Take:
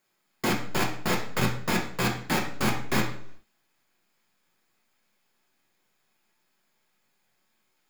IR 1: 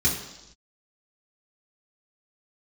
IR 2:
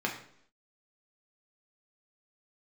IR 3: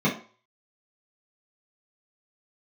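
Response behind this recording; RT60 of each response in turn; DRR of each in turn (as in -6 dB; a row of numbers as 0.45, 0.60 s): 2; not exponential, 0.65 s, 0.40 s; -5.0, -1.0, -8.0 dB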